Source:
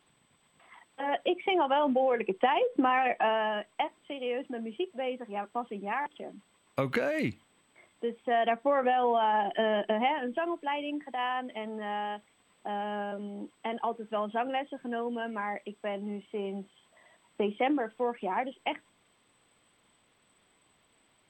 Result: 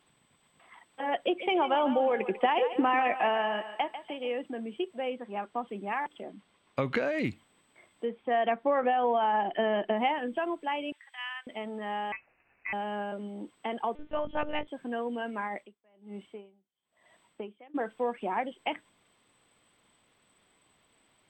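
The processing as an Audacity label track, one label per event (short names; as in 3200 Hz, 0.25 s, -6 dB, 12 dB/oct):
1.170000	4.360000	thinning echo 0.145 s, feedback 45%, level -10 dB
5.100000	5.680000	LPF 6900 Hz
6.230000	7.250000	LPF 6000 Hz
8.050000	9.970000	Bessel low-pass 3200 Hz
10.920000	11.470000	HPF 1400 Hz 24 dB/oct
12.120000	12.730000	inverted band carrier 2800 Hz
13.950000	14.680000	monotone LPC vocoder at 8 kHz 300 Hz
15.470000	17.740000	dB-linear tremolo 1.8 Hz -> 0.65 Hz, depth 33 dB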